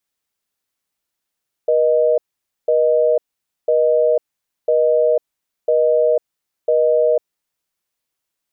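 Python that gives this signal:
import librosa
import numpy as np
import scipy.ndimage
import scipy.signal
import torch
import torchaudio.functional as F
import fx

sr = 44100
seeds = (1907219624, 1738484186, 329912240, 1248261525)

y = fx.call_progress(sr, length_s=5.52, kind='busy tone', level_db=-14.5)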